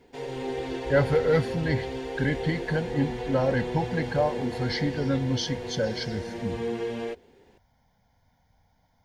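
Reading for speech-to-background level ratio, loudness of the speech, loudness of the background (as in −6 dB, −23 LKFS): 5.5 dB, −28.0 LKFS, −33.5 LKFS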